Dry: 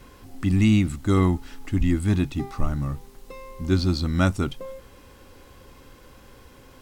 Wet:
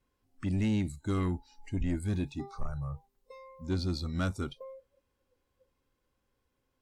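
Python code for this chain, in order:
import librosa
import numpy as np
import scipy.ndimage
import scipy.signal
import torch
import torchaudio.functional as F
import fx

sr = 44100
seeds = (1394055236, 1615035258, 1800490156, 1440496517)

y = fx.noise_reduce_blind(x, sr, reduce_db=22)
y = 10.0 ** (-15.5 / 20.0) * np.tanh(y / 10.0 ** (-15.5 / 20.0))
y = F.gain(torch.from_numpy(y), -8.0).numpy()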